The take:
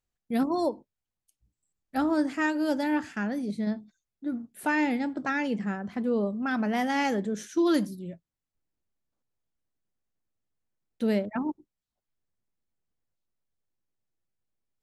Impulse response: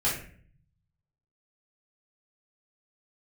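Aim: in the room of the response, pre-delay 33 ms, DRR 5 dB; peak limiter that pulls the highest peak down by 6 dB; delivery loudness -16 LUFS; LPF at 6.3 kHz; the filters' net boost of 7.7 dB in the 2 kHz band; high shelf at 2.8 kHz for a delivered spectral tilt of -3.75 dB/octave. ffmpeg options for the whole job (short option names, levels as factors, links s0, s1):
-filter_complex "[0:a]lowpass=6300,equalizer=f=2000:t=o:g=8,highshelf=f=2800:g=3.5,alimiter=limit=0.141:level=0:latency=1,asplit=2[s0][s1];[1:a]atrim=start_sample=2205,adelay=33[s2];[s1][s2]afir=irnorm=-1:irlink=0,volume=0.178[s3];[s0][s3]amix=inputs=2:normalize=0,volume=3.55"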